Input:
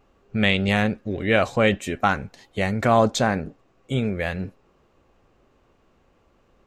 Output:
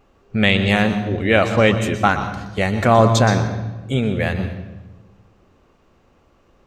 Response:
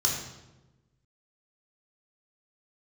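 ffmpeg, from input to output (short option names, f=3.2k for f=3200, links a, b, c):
-filter_complex "[0:a]asplit=2[a][b];[1:a]atrim=start_sample=2205,asetrate=37926,aresample=44100,adelay=121[c];[b][c]afir=irnorm=-1:irlink=0,volume=-19dB[d];[a][d]amix=inputs=2:normalize=0,volume=4dB"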